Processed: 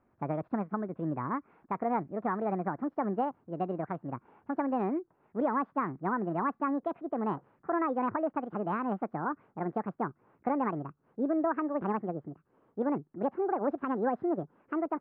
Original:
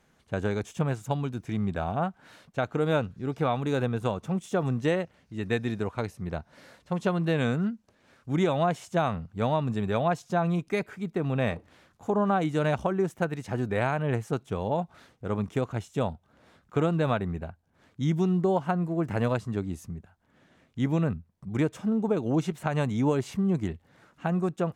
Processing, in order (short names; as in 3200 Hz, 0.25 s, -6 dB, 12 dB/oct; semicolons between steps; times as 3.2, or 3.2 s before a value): speed glide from 149% -> 181%; LPF 1500 Hz 24 dB/oct; gain -4 dB